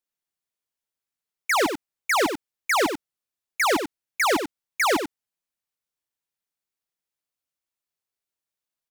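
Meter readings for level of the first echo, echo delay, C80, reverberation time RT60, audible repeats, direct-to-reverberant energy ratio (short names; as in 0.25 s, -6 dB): -7.5 dB, 92 ms, none, none, 1, none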